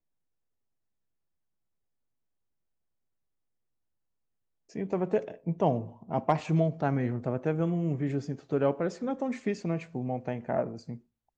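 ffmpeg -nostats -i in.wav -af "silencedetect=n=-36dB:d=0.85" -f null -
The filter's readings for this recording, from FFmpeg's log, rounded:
silence_start: 0.00
silence_end: 4.76 | silence_duration: 4.76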